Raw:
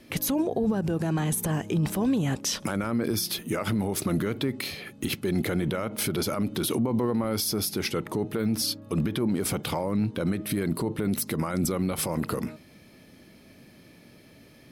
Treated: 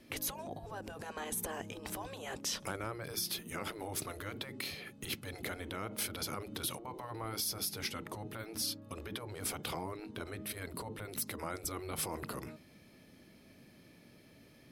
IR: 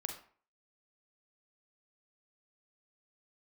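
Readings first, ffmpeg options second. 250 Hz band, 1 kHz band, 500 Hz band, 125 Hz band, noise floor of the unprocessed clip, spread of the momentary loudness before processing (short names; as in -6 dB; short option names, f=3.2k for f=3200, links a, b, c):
-19.5 dB, -8.0 dB, -14.0 dB, -17.0 dB, -53 dBFS, 4 LU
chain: -af "afftfilt=real='re*lt(hypot(re,im),0.178)':imag='im*lt(hypot(re,im),0.178)':win_size=1024:overlap=0.75,volume=-7dB"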